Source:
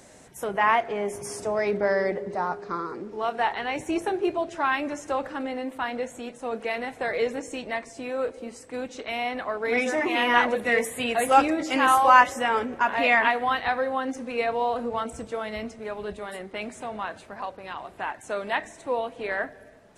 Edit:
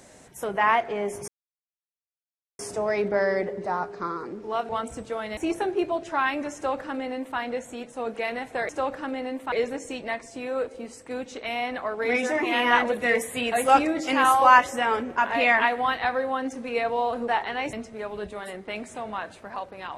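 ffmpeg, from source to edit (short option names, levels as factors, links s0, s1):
-filter_complex "[0:a]asplit=8[s0][s1][s2][s3][s4][s5][s6][s7];[s0]atrim=end=1.28,asetpts=PTS-STARTPTS,afade=t=out:st=1.276:d=0.004:c=hsin,apad=pad_dur=1.31[s8];[s1]atrim=start=1.28:end=3.382,asetpts=PTS-STARTPTS,afade=t=in:d=0.004:c=hsin[s9];[s2]atrim=start=14.908:end=15.592[s10];[s3]atrim=start=3.828:end=7.152[s11];[s4]atrim=start=5.008:end=5.842[s12];[s5]atrim=start=7.148:end=14.912[s13];[s6]atrim=start=3.378:end=3.832[s14];[s7]atrim=start=15.588[s15];[s8][s9]concat=n=2:v=0:a=1[s16];[s16][s10]acrossfade=d=0.004:c1=hsin:c2=hsin[s17];[s17][s11]acrossfade=d=0.004:c1=hsin:c2=hsin[s18];[s18][s12]acrossfade=d=0.004:c1=hsin:c2=hsin[s19];[s19][s13]acrossfade=d=0.004:c1=hsin:c2=hsin[s20];[s20][s14]acrossfade=d=0.004:c1=hsin:c2=hsin[s21];[s21][s15]acrossfade=d=0.004:c1=hsin:c2=hsin"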